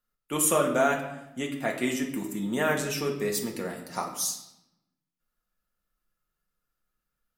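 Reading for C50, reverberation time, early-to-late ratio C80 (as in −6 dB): 7.5 dB, 0.85 s, 10.0 dB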